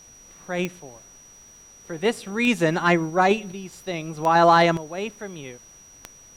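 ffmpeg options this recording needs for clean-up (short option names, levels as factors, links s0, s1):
-af "adeclick=t=4,bandreject=f=5800:w=30,agate=range=0.0891:threshold=0.00891"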